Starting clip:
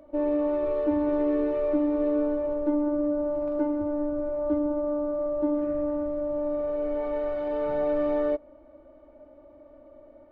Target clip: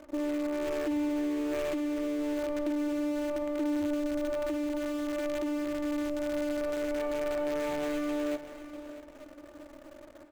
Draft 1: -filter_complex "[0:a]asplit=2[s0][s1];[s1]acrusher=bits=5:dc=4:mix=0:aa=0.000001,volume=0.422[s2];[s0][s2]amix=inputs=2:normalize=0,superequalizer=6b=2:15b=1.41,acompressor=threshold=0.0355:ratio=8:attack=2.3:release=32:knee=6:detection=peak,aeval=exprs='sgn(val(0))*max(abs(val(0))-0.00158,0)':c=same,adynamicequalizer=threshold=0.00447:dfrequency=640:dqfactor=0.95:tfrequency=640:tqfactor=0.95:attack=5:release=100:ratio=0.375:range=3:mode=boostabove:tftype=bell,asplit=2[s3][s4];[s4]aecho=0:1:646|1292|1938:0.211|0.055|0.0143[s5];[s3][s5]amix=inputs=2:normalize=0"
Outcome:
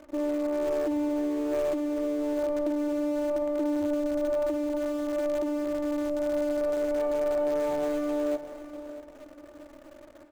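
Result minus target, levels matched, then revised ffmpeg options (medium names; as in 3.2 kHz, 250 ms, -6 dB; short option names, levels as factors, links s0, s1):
2 kHz band -6.0 dB
-filter_complex "[0:a]asplit=2[s0][s1];[s1]acrusher=bits=5:dc=4:mix=0:aa=0.000001,volume=0.422[s2];[s0][s2]amix=inputs=2:normalize=0,superequalizer=6b=2:15b=1.41,acompressor=threshold=0.0355:ratio=8:attack=2.3:release=32:knee=6:detection=peak,aeval=exprs='sgn(val(0))*max(abs(val(0))-0.00158,0)':c=same,adynamicequalizer=threshold=0.00447:dfrequency=2400:dqfactor=0.95:tfrequency=2400:tqfactor=0.95:attack=5:release=100:ratio=0.375:range=3:mode=boostabove:tftype=bell,asplit=2[s3][s4];[s4]aecho=0:1:646|1292|1938:0.211|0.055|0.0143[s5];[s3][s5]amix=inputs=2:normalize=0"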